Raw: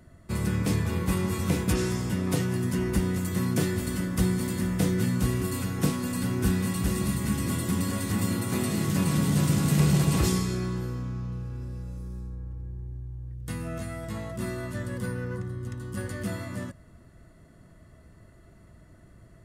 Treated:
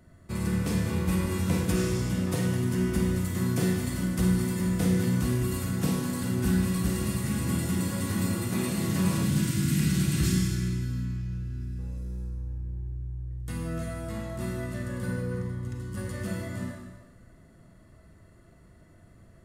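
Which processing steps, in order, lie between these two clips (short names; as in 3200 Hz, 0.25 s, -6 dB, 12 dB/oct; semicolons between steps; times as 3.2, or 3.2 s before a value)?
9.23–11.79 band shelf 680 Hz -14 dB; Schroeder reverb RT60 1.2 s, combs from 33 ms, DRR 1 dB; gain -3.5 dB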